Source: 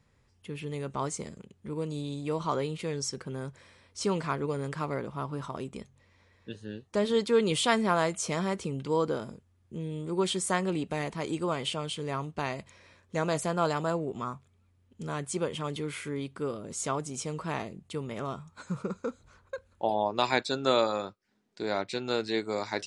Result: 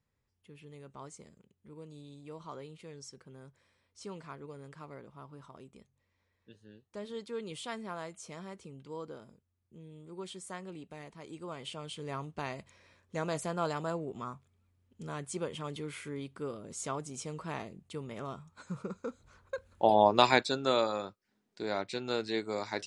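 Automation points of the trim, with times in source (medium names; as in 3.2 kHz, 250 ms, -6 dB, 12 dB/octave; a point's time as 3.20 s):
11.22 s -15 dB
12.12 s -5.5 dB
19.02 s -5.5 dB
20.09 s +6 dB
20.65 s -3.5 dB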